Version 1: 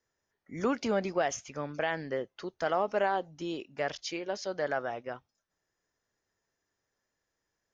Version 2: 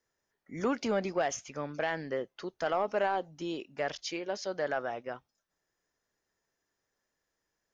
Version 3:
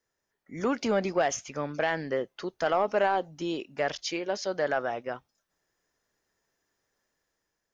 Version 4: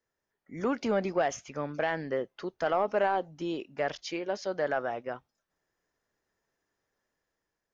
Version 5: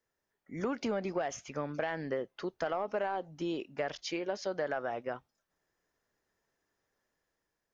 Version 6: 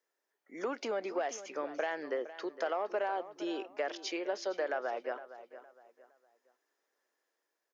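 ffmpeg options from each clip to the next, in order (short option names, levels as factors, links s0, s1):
-af "equalizer=f=93:w=2.1:g=-5.5,asoftclip=type=tanh:threshold=0.119"
-af "dynaudnorm=f=280:g=5:m=1.68"
-af "highshelf=f=3800:g=-8,volume=0.841"
-af "acompressor=threshold=0.0316:ratio=6"
-filter_complex "[0:a]highpass=f=320:w=0.5412,highpass=f=320:w=1.3066,asplit=2[s0][s1];[s1]adelay=462,lowpass=f=3600:p=1,volume=0.2,asplit=2[s2][s3];[s3]adelay=462,lowpass=f=3600:p=1,volume=0.32,asplit=2[s4][s5];[s5]adelay=462,lowpass=f=3600:p=1,volume=0.32[s6];[s0][s2][s4][s6]amix=inputs=4:normalize=0"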